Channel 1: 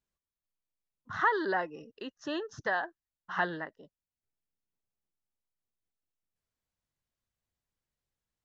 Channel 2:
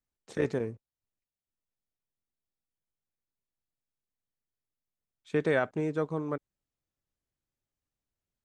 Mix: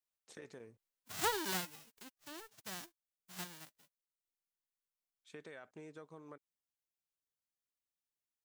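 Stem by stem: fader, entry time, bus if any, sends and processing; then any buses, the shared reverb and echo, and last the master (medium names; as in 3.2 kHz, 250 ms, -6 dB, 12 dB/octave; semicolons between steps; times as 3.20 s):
1.56 s -7.5 dB -> 2.22 s -15.5 dB, 0.00 s, no send, formants flattened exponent 0.1
-12.5 dB, 0.00 s, no send, peak limiter -21 dBFS, peak gain reduction 6.5 dB; tilt EQ +2.5 dB/octave; compression 3:1, threshold -37 dBFS, peak gain reduction 7 dB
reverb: none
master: none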